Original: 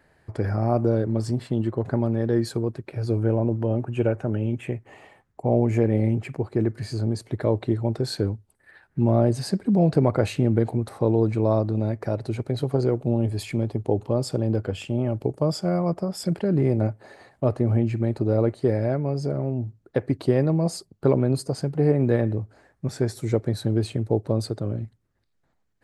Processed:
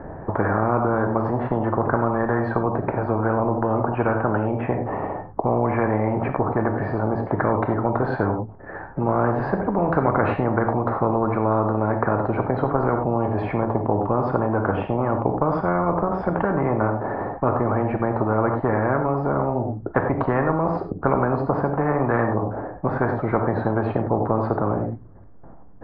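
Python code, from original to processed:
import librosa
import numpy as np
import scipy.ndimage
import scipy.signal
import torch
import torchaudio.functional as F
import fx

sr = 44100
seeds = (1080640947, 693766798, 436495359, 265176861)

y = scipy.signal.sosfilt(scipy.signal.butter(4, 1100.0, 'lowpass', fs=sr, output='sos'), x)
y = fx.rev_gated(y, sr, seeds[0], gate_ms=120, shape='flat', drr_db=5.5)
y = fx.spectral_comp(y, sr, ratio=4.0)
y = F.gain(torch.from_numpy(y), 1.5).numpy()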